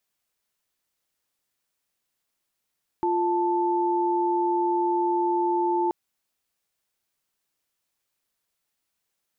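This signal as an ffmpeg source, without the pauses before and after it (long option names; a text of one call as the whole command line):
ffmpeg -f lavfi -i "aevalsrc='0.0668*(sin(2*PI*349.23*t)+sin(2*PI*880*t))':duration=2.88:sample_rate=44100" out.wav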